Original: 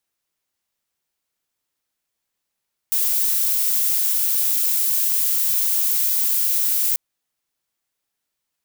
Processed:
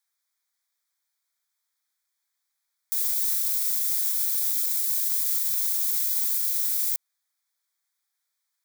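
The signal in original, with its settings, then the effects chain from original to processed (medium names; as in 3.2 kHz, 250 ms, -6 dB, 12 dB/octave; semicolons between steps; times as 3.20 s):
noise violet, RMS -19.5 dBFS 4.04 s
high-pass 1.1 kHz 12 dB/octave; peak limiter -15.5 dBFS; Butterworth band-stop 2.8 kHz, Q 3.5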